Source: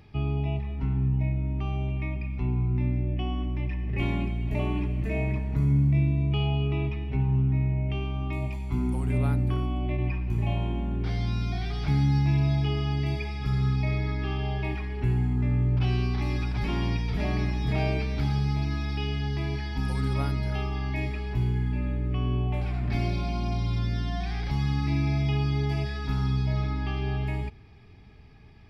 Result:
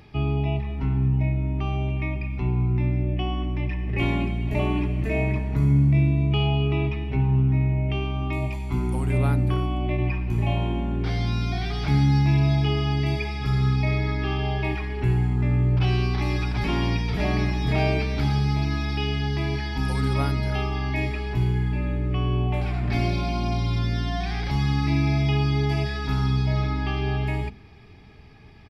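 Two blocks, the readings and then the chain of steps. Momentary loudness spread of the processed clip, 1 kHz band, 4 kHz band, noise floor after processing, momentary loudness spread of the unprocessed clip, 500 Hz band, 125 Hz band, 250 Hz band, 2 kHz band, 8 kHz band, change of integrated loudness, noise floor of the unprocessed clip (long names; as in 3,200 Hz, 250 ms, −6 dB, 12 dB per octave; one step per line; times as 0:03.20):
6 LU, +6.0 dB, +6.0 dB, −30 dBFS, 6 LU, +5.5 dB, +3.5 dB, +4.0 dB, +6.0 dB, can't be measured, +3.5 dB, −33 dBFS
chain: low-shelf EQ 140 Hz −4 dB
mains-hum notches 50/100/150/200/250 Hz
downsampling to 32,000 Hz
level +6 dB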